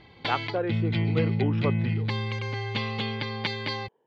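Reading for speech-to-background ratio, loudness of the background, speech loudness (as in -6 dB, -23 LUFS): -3.0 dB, -29.0 LUFS, -32.0 LUFS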